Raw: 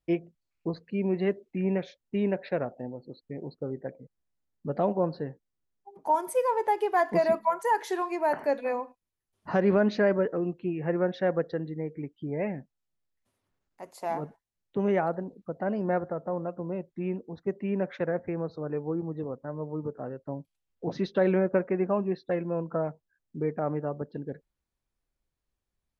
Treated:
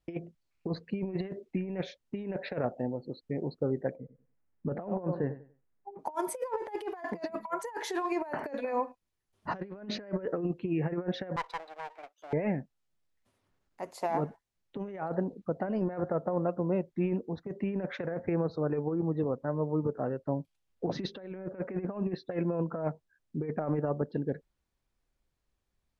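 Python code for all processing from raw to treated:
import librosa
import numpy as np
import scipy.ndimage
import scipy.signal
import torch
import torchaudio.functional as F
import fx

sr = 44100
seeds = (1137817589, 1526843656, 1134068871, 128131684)

y = fx.chain(x, sr, fx.cheby2_lowpass(hz=9000.0, order=4, stop_db=70),
    fx.echo_feedback(ms=95, feedback_pct=25, wet_db=-15), at=(3.96, 5.99))
y = fx.chain(y, sr, fx.lower_of_two(delay_ms=0.8),
    fx.highpass(hz=610.0, slope=24),
    fx.tube_stage(drive_db=28.0, bias=0.5), at=(11.36, 12.33))
y = fx.over_compress(y, sr, threshold_db=-31.0, ratio=-0.5)
y = fx.high_shelf(y, sr, hz=11000.0, db=-11.0)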